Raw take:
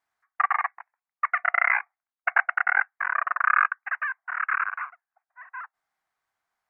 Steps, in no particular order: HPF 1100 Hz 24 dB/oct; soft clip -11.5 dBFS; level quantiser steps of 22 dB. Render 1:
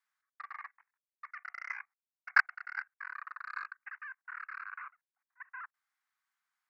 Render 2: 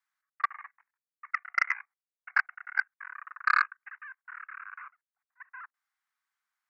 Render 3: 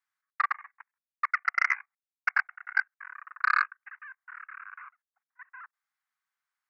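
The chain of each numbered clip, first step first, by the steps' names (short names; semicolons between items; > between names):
HPF > soft clip > level quantiser; HPF > level quantiser > soft clip; level quantiser > HPF > soft clip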